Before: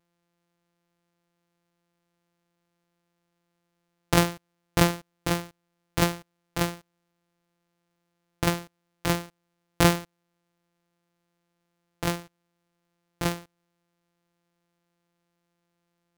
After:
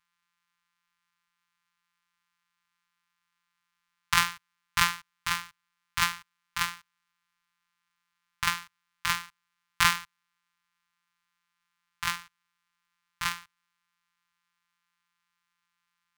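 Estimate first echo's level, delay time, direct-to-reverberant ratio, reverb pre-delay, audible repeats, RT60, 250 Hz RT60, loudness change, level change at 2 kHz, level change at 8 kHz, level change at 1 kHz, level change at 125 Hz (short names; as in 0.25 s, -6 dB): none, none, none, none, none, none, none, -1.5 dB, +3.5 dB, 0.0 dB, +0.5 dB, -16.0 dB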